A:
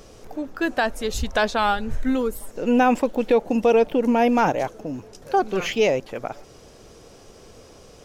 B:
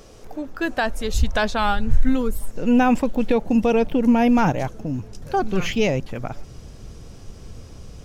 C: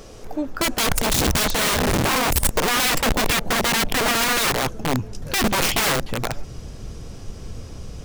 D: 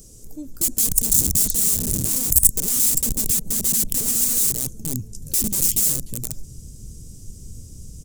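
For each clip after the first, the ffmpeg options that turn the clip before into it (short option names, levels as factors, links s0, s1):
-af "asubboost=boost=5.5:cutoff=190"
-af "aeval=exprs='(mod(9.44*val(0)+1,2)-1)/9.44':c=same,volume=1.68"
-af "firequalizer=gain_entry='entry(170,0);entry(750,-22);entry(1600,-22);entry(7400,12)':delay=0.05:min_phase=1,volume=0.668"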